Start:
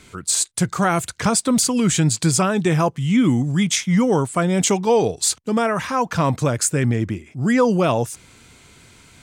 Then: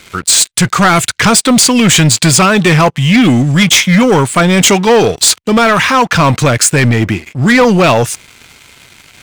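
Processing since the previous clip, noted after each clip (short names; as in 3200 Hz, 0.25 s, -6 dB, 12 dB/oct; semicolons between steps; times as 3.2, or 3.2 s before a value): bell 2600 Hz +10 dB 2 oct; sample leveller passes 3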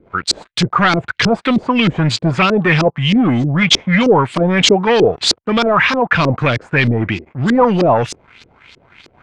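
LFO low-pass saw up 3.2 Hz 340–5300 Hz; gain -6 dB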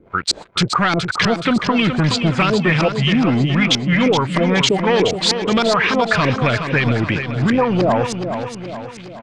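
compressor, threshold -13 dBFS, peak gain reduction 7 dB; on a send: feedback echo 0.422 s, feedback 51%, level -8 dB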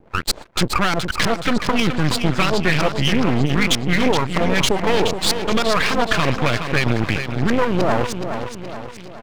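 half-wave rectifier; gain +2 dB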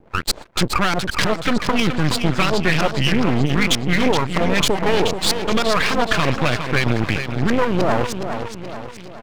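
record warp 33 1/3 rpm, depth 100 cents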